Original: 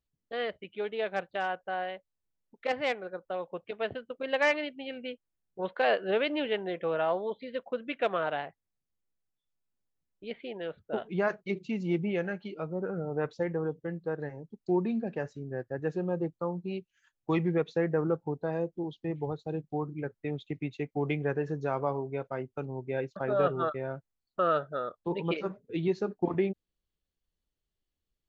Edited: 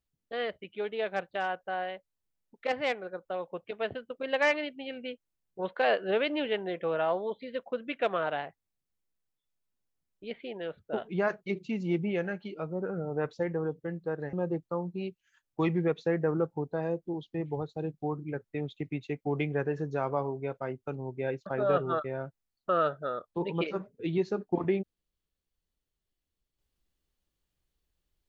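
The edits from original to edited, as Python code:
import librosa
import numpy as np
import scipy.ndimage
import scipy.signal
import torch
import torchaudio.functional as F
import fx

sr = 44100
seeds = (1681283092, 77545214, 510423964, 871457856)

y = fx.edit(x, sr, fx.cut(start_s=14.33, length_s=1.7), tone=tone)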